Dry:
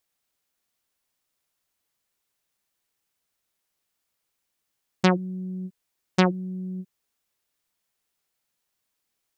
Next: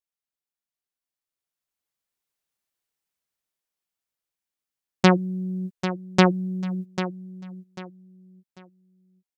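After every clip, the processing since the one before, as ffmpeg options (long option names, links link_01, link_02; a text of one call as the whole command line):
ffmpeg -i in.wav -filter_complex "[0:a]agate=range=-15dB:threshold=-36dB:ratio=16:detection=peak,dynaudnorm=framelen=230:gausssize=17:maxgain=12dB,asplit=2[link_01][link_02];[link_02]aecho=0:1:794|1588|2382:0.282|0.0789|0.0221[link_03];[link_01][link_03]amix=inputs=2:normalize=0,volume=-1dB" out.wav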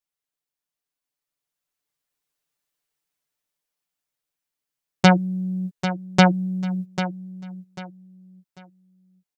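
ffmpeg -i in.wav -af "aecho=1:1:6.8:0.71,volume=1dB" out.wav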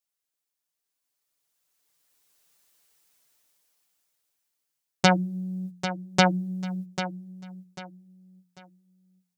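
ffmpeg -i in.wav -af "bass=frequency=250:gain=-3,treble=frequency=4000:gain=5,bandreject=frequency=179.2:width_type=h:width=4,bandreject=frequency=358.4:width_type=h:width=4,dynaudnorm=framelen=830:gausssize=5:maxgain=15dB,volume=-1dB" out.wav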